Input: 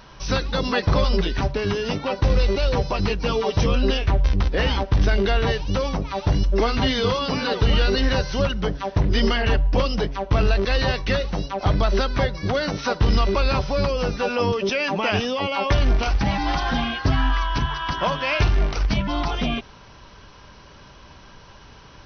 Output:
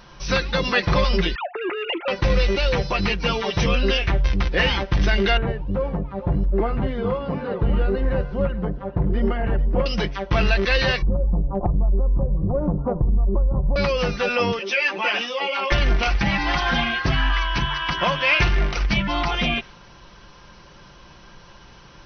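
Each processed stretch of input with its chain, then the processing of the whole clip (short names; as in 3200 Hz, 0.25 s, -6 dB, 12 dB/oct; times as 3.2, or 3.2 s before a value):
1.35–2.08 sine-wave speech + compressor 3:1, threshold -21 dBFS + core saturation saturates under 500 Hz
5.37–9.86 Bessel low-pass 750 Hz + echo 0.434 s -14.5 dB
11.02–13.76 steep low-pass 1100 Hz 48 dB/oct + tilt -4 dB/oct + compressor, threshold -16 dBFS
14.59–15.72 HPF 280 Hz 24 dB/oct + ensemble effect
whole clip: comb 5.7 ms, depth 43%; dynamic EQ 2200 Hz, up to +8 dB, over -41 dBFS, Q 1.2; gain -1 dB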